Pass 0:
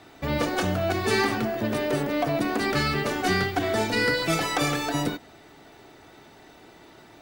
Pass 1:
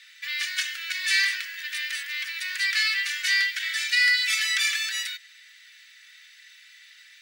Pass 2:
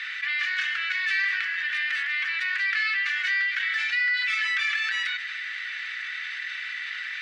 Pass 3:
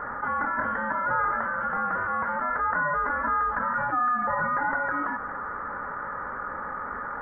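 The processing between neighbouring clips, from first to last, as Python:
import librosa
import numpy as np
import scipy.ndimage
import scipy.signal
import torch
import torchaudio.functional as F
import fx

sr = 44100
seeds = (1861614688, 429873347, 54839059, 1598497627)

y1 = scipy.signal.sosfilt(scipy.signal.ellip(4, 1.0, 60, 1800.0, 'highpass', fs=sr, output='sos'), x)
y1 = fx.high_shelf(y1, sr, hz=10000.0, db=-8.5)
y1 = F.gain(torch.from_numpy(y1), 7.5).numpy()
y2 = scipy.signal.sosfilt(scipy.signal.butter(2, 1800.0, 'lowpass', fs=sr, output='sos'), y1)
y2 = fx.env_flatten(y2, sr, amount_pct=70)
y3 = fx.freq_invert(y2, sr, carrier_hz=3200)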